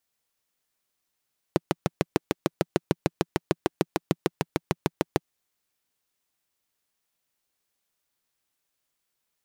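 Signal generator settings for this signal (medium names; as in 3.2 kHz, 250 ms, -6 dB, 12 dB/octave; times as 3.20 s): single-cylinder engine model, steady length 3.64 s, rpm 800, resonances 170/330 Hz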